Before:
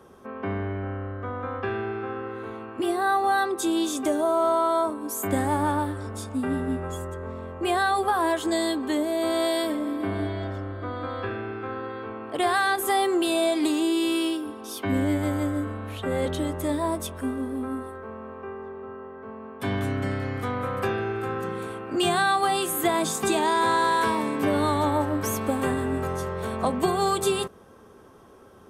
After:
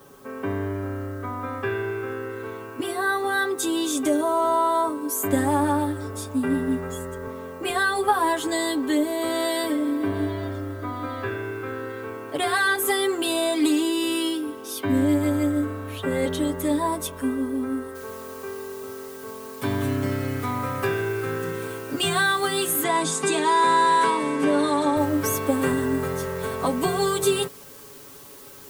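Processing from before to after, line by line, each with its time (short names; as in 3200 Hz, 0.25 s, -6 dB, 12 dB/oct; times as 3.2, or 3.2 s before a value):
7.27–7.7 HPF 110 Hz
17.95 noise floor step -63 dB -51 dB
22.83–24.97 elliptic band-pass 160–9500 Hz
whole clip: high shelf 9000 Hz +4.5 dB; notch 700 Hz, Q 15; comb 7.1 ms, depth 80%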